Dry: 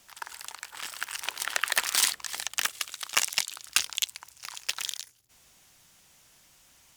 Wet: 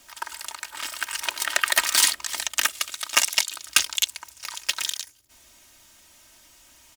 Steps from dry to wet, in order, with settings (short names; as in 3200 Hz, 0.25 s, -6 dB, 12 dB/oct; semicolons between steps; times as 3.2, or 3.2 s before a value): comb 3.2 ms, depth 69%; gain +4 dB